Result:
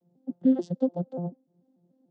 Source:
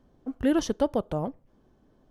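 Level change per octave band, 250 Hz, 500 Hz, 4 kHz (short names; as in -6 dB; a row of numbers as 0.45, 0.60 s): +1.5 dB, -4.0 dB, under -15 dB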